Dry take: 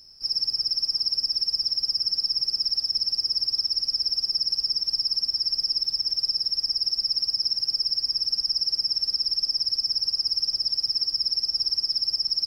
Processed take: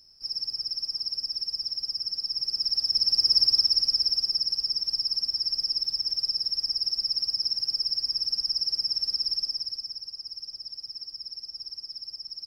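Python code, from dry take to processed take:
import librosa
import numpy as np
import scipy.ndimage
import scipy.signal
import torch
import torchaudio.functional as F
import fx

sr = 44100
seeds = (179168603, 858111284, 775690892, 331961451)

y = fx.gain(x, sr, db=fx.line((2.22, -6.0), (3.38, 5.0), (4.54, -2.5), (9.34, -2.5), (10.05, -13.5)))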